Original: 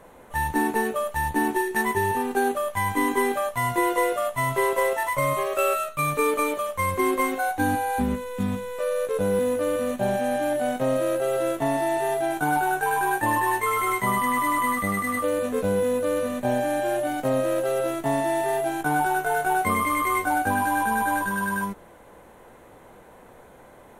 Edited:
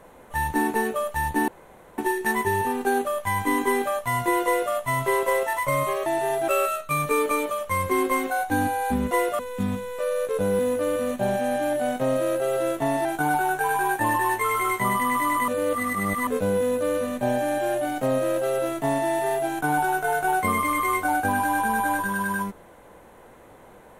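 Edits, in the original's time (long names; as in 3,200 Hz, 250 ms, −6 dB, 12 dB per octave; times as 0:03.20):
0:01.48: splice in room tone 0.50 s
0:03.95–0:04.23: duplicate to 0:08.19
0:11.85–0:12.27: move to 0:05.56
0:14.70–0:15.49: reverse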